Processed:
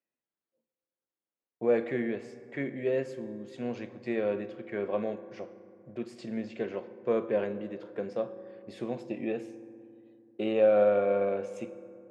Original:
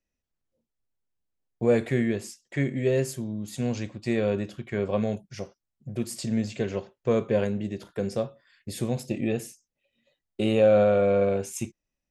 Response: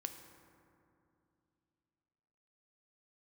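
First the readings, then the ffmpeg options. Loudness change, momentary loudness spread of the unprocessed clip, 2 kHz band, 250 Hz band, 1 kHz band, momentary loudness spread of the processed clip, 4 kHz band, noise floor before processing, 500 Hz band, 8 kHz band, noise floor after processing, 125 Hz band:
−4.5 dB, 15 LU, −4.5 dB, −7.0 dB, −3.0 dB, 19 LU, −10.5 dB, below −85 dBFS, −3.5 dB, below −20 dB, below −85 dBFS, −15.0 dB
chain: -filter_complex "[0:a]highpass=270,lowpass=2300,asplit=2[link_01][link_02];[1:a]atrim=start_sample=2205,highshelf=frequency=5200:gain=7[link_03];[link_02][link_03]afir=irnorm=-1:irlink=0,volume=3dB[link_04];[link_01][link_04]amix=inputs=2:normalize=0,volume=-9dB"

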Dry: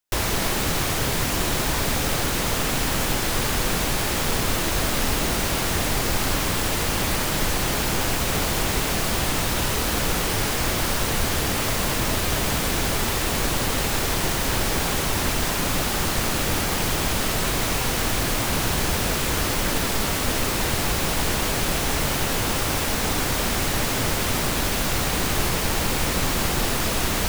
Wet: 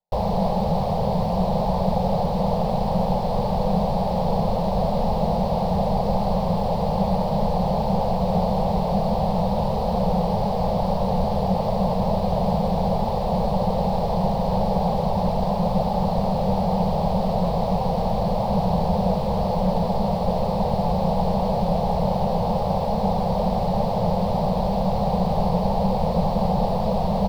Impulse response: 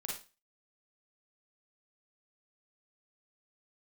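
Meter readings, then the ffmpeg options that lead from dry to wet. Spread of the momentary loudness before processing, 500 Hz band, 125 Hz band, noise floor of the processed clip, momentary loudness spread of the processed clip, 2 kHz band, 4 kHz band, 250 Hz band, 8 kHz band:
0 LU, +6.0 dB, +3.5 dB, −24 dBFS, 1 LU, −20.0 dB, −14.0 dB, +5.0 dB, below −25 dB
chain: -af "firequalizer=gain_entry='entry(130,0);entry(190,14);entry(280,-20);entry(500,8);entry(830,9);entry(1400,-22);entry(3000,-17);entry(4400,-10);entry(6500,-28);entry(13000,-26)':delay=0.05:min_phase=1"

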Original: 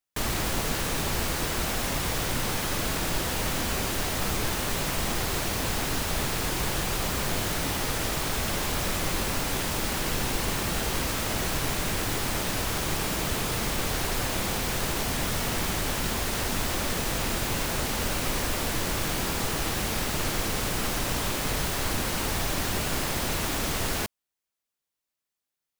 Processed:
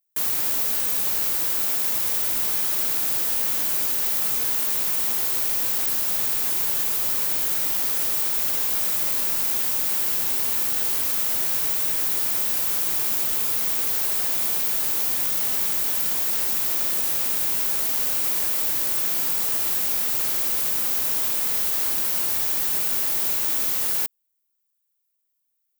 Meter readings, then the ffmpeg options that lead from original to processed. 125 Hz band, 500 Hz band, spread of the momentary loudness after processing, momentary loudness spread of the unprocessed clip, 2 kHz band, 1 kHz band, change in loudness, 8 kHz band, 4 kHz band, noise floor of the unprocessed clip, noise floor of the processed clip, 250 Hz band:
−15.5 dB, −7.5 dB, 0 LU, 0 LU, −4.5 dB, −6.0 dB, +8.0 dB, +4.0 dB, −1.5 dB, below −85 dBFS, −74 dBFS, −10.5 dB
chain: -af "aemphasis=mode=production:type=bsi,volume=-6dB"

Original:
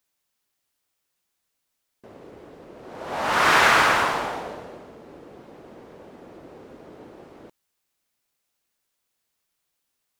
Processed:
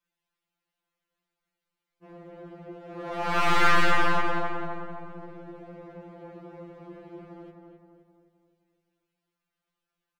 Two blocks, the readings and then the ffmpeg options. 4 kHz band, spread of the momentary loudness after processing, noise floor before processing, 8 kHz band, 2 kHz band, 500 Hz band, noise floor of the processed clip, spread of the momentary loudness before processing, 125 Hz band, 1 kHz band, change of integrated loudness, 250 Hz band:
−7.0 dB, 24 LU, −78 dBFS, −11.0 dB, −6.0 dB, −3.5 dB, below −85 dBFS, 20 LU, +3.0 dB, −4.5 dB, −6.0 dB, +1.0 dB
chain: -filter_complex "[0:a]bass=frequency=250:gain=5,treble=frequency=4000:gain=-14,bandreject=frequency=78.69:width_type=h:width=4,bandreject=frequency=157.38:width_type=h:width=4,bandreject=frequency=236.07:width_type=h:width=4,bandreject=frequency=314.76:width_type=h:width=4,bandreject=frequency=393.45:width_type=h:width=4,bandreject=frequency=472.14:width_type=h:width=4,bandreject=frequency=550.83:width_type=h:width=4,bandreject=frequency=629.52:width_type=h:width=4,bandreject=frequency=708.21:width_type=h:width=4,bandreject=frequency=786.9:width_type=h:width=4,bandreject=frequency=865.59:width_type=h:width=4,bandreject=frequency=944.28:width_type=h:width=4,bandreject=frequency=1022.97:width_type=h:width=4,bandreject=frequency=1101.66:width_type=h:width=4,bandreject=frequency=1180.35:width_type=h:width=4,bandreject=frequency=1259.04:width_type=h:width=4,bandreject=frequency=1337.73:width_type=h:width=4,bandreject=frequency=1416.42:width_type=h:width=4,bandreject=frequency=1495.11:width_type=h:width=4,bandreject=frequency=1573.8:width_type=h:width=4,bandreject=frequency=1652.49:width_type=h:width=4,bandreject=frequency=1731.18:width_type=h:width=4,bandreject=frequency=1809.87:width_type=h:width=4,bandreject=frequency=1888.56:width_type=h:width=4,bandreject=frequency=1967.25:width_type=h:width=4,bandreject=frequency=2045.94:width_type=h:width=4,bandreject=frequency=2124.63:width_type=h:width=4,bandreject=frequency=2203.32:width_type=h:width=4,bandreject=frequency=2282.01:width_type=h:width=4,bandreject=frequency=2360.7:width_type=h:width=4,bandreject=frequency=2439.39:width_type=h:width=4,aeval=exprs='clip(val(0),-1,0.0398)':channel_layout=same,asplit=2[link_01][link_02];[link_02]adelay=260,lowpass=frequency=2200:poles=1,volume=-4dB,asplit=2[link_03][link_04];[link_04]adelay=260,lowpass=frequency=2200:poles=1,volume=0.51,asplit=2[link_05][link_06];[link_06]adelay=260,lowpass=frequency=2200:poles=1,volume=0.51,asplit=2[link_07][link_08];[link_08]adelay=260,lowpass=frequency=2200:poles=1,volume=0.51,asplit=2[link_09][link_10];[link_10]adelay=260,lowpass=frequency=2200:poles=1,volume=0.51,asplit=2[link_11][link_12];[link_12]adelay=260,lowpass=frequency=2200:poles=1,volume=0.51,asplit=2[link_13][link_14];[link_14]adelay=260,lowpass=frequency=2200:poles=1,volume=0.51[link_15];[link_03][link_05][link_07][link_09][link_11][link_13][link_15]amix=inputs=7:normalize=0[link_16];[link_01][link_16]amix=inputs=2:normalize=0,afftfilt=real='re*2.83*eq(mod(b,8),0)':imag='im*2.83*eq(mod(b,8),0)':win_size=2048:overlap=0.75"

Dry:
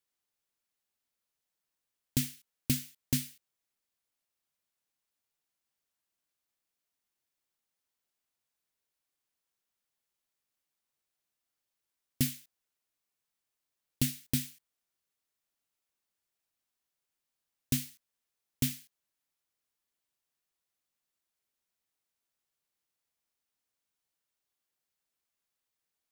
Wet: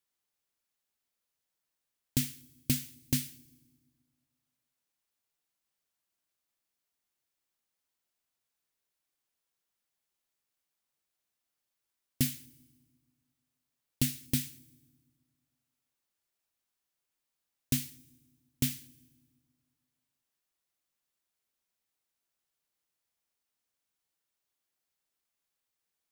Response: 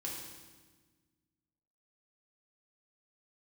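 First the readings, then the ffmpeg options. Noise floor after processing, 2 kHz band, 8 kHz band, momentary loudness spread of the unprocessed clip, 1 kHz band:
below −85 dBFS, +0.5 dB, +0.5 dB, 13 LU, +0.5 dB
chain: -filter_complex "[0:a]asplit=2[link_01][link_02];[1:a]atrim=start_sample=2205,highshelf=frequency=6800:gain=8[link_03];[link_02][link_03]afir=irnorm=-1:irlink=0,volume=-21.5dB[link_04];[link_01][link_04]amix=inputs=2:normalize=0"

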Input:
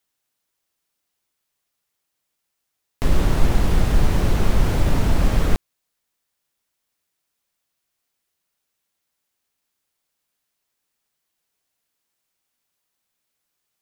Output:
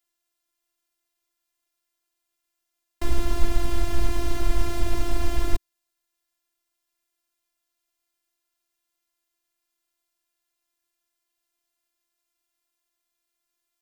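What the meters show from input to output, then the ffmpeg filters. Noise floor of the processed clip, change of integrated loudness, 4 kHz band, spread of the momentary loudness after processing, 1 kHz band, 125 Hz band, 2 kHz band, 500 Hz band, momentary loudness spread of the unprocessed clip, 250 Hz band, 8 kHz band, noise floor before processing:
−82 dBFS, −7.5 dB, −4.5 dB, 3 LU, −6.0 dB, −9.5 dB, −6.5 dB, −6.0 dB, 4 LU, −7.5 dB, −3.5 dB, −78 dBFS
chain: -filter_complex "[0:a]afftfilt=real='hypot(re,im)*cos(PI*b)':imag='0':win_size=512:overlap=0.75,acrossover=split=130|3000[link_01][link_02][link_03];[link_02]acompressor=threshold=-31dB:ratio=3[link_04];[link_01][link_04][link_03]amix=inputs=3:normalize=0"

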